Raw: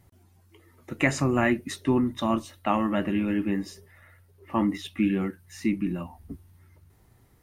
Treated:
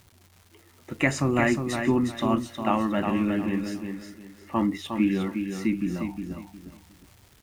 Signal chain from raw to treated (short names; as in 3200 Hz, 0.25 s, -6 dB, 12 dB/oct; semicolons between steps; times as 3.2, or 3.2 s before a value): crackle 430/s -44 dBFS; feedback echo 0.359 s, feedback 27%, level -6.5 dB